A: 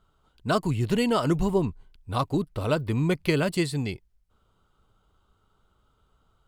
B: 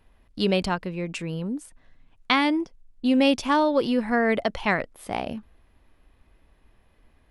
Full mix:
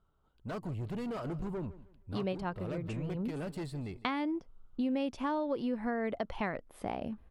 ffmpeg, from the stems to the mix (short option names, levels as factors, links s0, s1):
-filter_complex "[0:a]asoftclip=type=tanh:threshold=0.0447,volume=0.473,asplit=3[s0][s1][s2];[s1]volume=0.126[s3];[1:a]agate=range=0.224:threshold=0.00251:ratio=16:detection=peak,adelay=1750,volume=0.794[s4];[s2]apad=whole_len=399466[s5];[s4][s5]sidechaincompress=threshold=0.00891:ratio=8:attack=16:release=133[s6];[s3]aecho=0:1:157|314|471|628:1|0.29|0.0841|0.0244[s7];[s0][s6][s7]amix=inputs=3:normalize=0,highshelf=f=2100:g=-11,acompressor=threshold=0.0224:ratio=3"